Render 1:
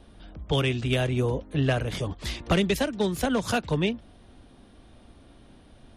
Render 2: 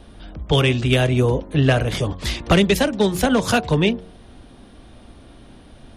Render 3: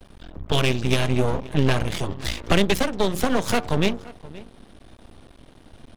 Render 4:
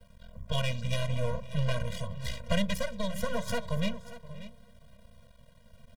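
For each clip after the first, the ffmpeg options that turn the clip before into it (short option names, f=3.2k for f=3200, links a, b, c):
-af "bandreject=f=91.27:t=h:w=4,bandreject=f=182.54:t=h:w=4,bandreject=f=273.81:t=h:w=4,bandreject=f=365.08:t=h:w=4,bandreject=f=456.35:t=h:w=4,bandreject=f=547.62:t=h:w=4,bandreject=f=638.89:t=h:w=4,bandreject=f=730.16:t=h:w=4,bandreject=f=821.43:t=h:w=4,bandreject=f=912.7:t=h:w=4,bandreject=f=1.00397k:t=h:w=4,bandreject=f=1.09524k:t=h:w=4,volume=8dB"
-filter_complex "[0:a]asplit=2[a][b];[b]adelay=524.8,volume=-19dB,highshelf=f=4k:g=-11.8[c];[a][c]amix=inputs=2:normalize=0,aeval=exprs='max(val(0),0)':c=same"
-af "acrusher=bits=7:dc=4:mix=0:aa=0.000001,aecho=1:1:586:0.168,afftfilt=real='re*eq(mod(floor(b*sr/1024/230),2),0)':imag='im*eq(mod(floor(b*sr/1024/230),2),0)':win_size=1024:overlap=0.75,volume=-7.5dB"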